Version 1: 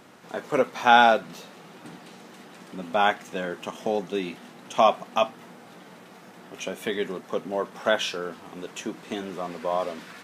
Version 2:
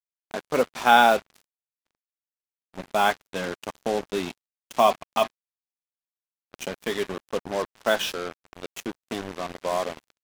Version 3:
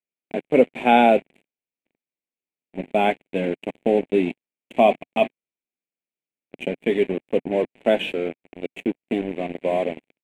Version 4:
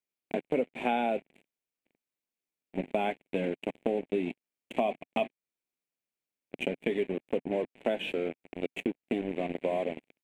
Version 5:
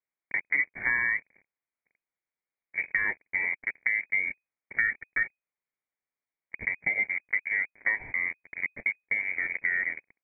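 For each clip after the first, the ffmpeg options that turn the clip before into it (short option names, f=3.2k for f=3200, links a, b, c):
-af "acrusher=bits=4:mix=0:aa=0.5,agate=range=-17dB:threshold=-56dB:ratio=16:detection=peak"
-af "firequalizer=gain_entry='entry(100,0);entry(150,8);entry(260,13);entry(720,5);entry(1200,-13);entry(2300,10);entry(5200,-25);entry(7900,-9);entry(15000,-20)':delay=0.05:min_phase=1,volume=-2dB"
-af "acompressor=threshold=-28dB:ratio=4"
-af "lowpass=f=2.1k:t=q:w=0.5098,lowpass=f=2.1k:t=q:w=0.6013,lowpass=f=2.1k:t=q:w=0.9,lowpass=f=2.1k:t=q:w=2.563,afreqshift=-2500,volume=2dB"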